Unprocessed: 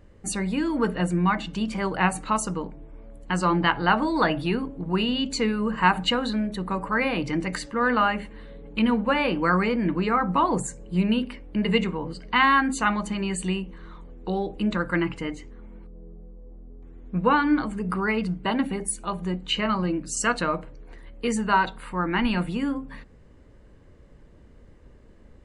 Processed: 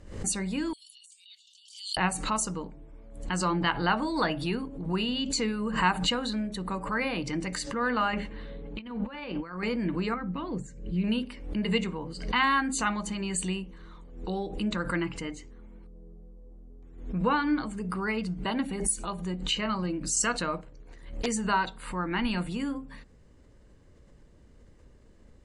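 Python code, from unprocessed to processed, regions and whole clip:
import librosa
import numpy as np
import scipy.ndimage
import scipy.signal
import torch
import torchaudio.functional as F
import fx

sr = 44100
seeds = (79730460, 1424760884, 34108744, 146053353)

y = fx.chain(x, sr, fx.cheby1_highpass(hz=3000.0, order=6),
    fx.over_compress(threshold_db=-53.0, ratio=-1.0), at=(0.73, 1.97))
y = fx.chain(y, sr, fx.lowpass(hz=4300.0, slope=12),
    fx.over_compress(threshold_db=-29.0, ratio=-0.5), at=(8.13, 9.63))
y = fx.chain(y, sr, fx.lowpass(hz=2600.0, slope=12),
    fx.peak_eq(hz=890.0, db=-14.5, octaves=1.4), at=(10.14, 11.04))
y = fx.chain(y, sr, fx.peak_eq(hz=6700.0, db=4.0, octaves=0.28),
    fx.transient(attack_db=4, sustain_db=-9),
    fx.doppler_dist(depth_ms=0.44), at=(20.57, 21.26))
y = scipy.signal.sosfilt(scipy.signal.butter(2, 9400.0, 'lowpass', fs=sr, output='sos'), y)
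y = fx.bass_treble(y, sr, bass_db=1, treble_db=10)
y = fx.pre_swell(y, sr, db_per_s=85.0)
y = F.gain(torch.from_numpy(y), -6.0).numpy()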